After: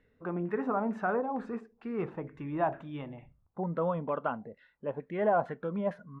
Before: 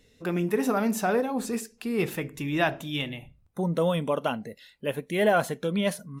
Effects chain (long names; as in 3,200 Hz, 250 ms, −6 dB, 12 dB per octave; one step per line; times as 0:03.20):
auto-filter low-pass saw down 2.2 Hz 840–1,700 Hz
level −7.5 dB